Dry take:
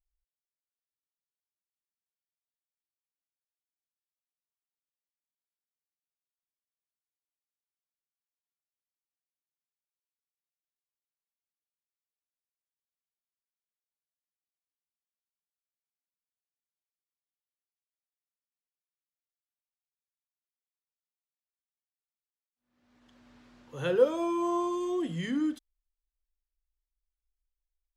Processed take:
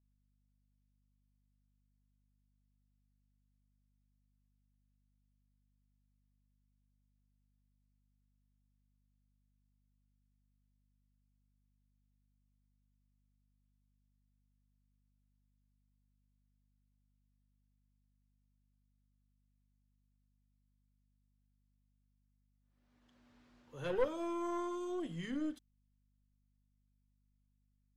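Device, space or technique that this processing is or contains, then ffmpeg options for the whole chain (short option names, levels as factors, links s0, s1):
valve amplifier with mains hum: -af "aeval=exprs='(tanh(10*val(0)+0.65)-tanh(0.65))/10':c=same,aeval=exprs='val(0)+0.000316*(sin(2*PI*50*n/s)+sin(2*PI*2*50*n/s)/2+sin(2*PI*3*50*n/s)/3+sin(2*PI*4*50*n/s)/4+sin(2*PI*5*50*n/s)/5)':c=same,volume=0.531"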